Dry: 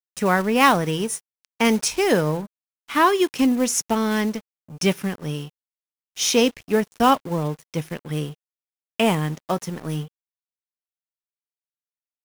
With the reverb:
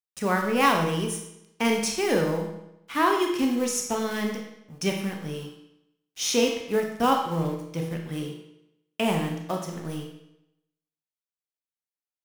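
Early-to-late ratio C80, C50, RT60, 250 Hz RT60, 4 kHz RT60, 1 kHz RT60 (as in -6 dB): 7.5 dB, 5.0 dB, 0.85 s, 0.85 s, 0.75 s, 0.85 s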